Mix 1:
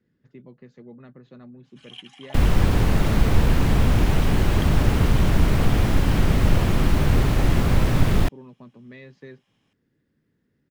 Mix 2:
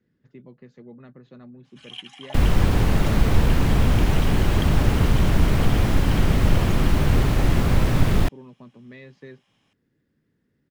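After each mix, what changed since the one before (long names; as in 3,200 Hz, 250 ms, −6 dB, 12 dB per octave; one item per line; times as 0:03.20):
first sound +4.0 dB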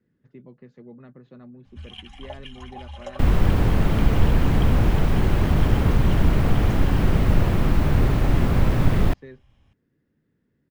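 first sound: remove high-pass filter 620 Hz
second sound: entry +0.85 s
master: add parametric band 7,400 Hz −7 dB 2.6 octaves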